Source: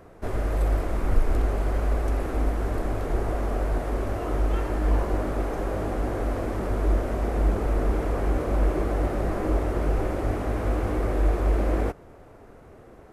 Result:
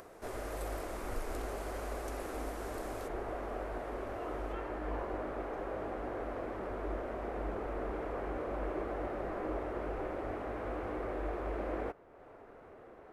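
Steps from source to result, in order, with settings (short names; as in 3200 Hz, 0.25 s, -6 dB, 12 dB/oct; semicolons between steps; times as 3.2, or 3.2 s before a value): tone controls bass -12 dB, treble +6 dB, from 3.07 s treble -8 dB, from 4.52 s treble -14 dB; upward compressor, threshold -39 dBFS; gain -7.5 dB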